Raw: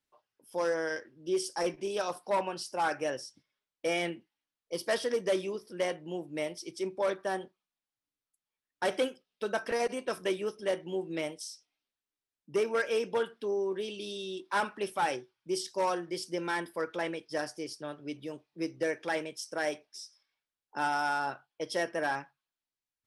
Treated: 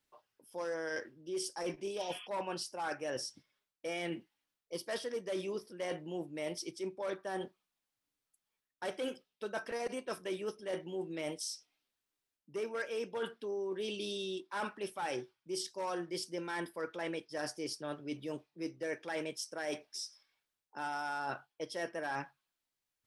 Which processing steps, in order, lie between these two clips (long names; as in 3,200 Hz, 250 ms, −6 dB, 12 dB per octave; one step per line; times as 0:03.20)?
healed spectral selection 0:02.00–0:02.25, 1,000–3,500 Hz before
reversed playback
downward compressor 6 to 1, threshold −40 dBFS, peak gain reduction 15 dB
reversed playback
level +4 dB